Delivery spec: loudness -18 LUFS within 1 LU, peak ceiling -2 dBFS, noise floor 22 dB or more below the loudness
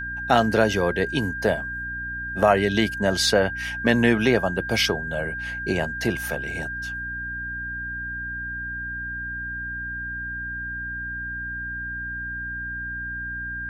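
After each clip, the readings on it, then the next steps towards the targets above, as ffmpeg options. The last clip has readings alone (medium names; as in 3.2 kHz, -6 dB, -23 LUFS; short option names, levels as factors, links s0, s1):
hum 60 Hz; highest harmonic 300 Hz; hum level -36 dBFS; steady tone 1.6 kHz; tone level -29 dBFS; loudness -25.0 LUFS; peak level -4.0 dBFS; loudness target -18.0 LUFS
-> -af "bandreject=f=60:t=h:w=4,bandreject=f=120:t=h:w=4,bandreject=f=180:t=h:w=4,bandreject=f=240:t=h:w=4,bandreject=f=300:t=h:w=4"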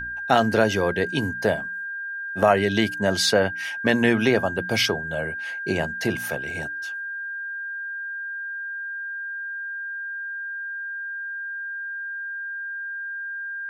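hum not found; steady tone 1.6 kHz; tone level -29 dBFS
-> -af "bandreject=f=1600:w=30"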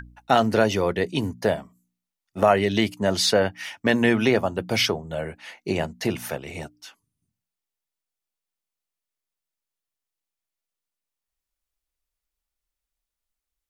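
steady tone not found; loudness -23.0 LUFS; peak level -4.5 dBFS; loudness target -18.0 LUFS
-> -af "volume=1.78,alimiter=limit=0.794:level=0:latency=1"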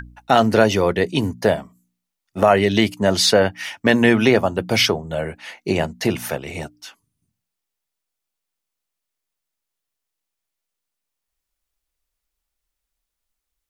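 loudness -18.5 LUFS; peak level -2.0 dBFS; noise floor -82 dBFS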